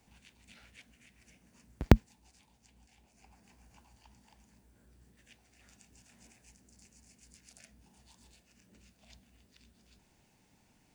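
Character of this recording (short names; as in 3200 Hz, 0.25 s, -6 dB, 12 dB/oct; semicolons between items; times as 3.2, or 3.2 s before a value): noise floor -69 dBFS; spectral tilt -7.0 dB/oct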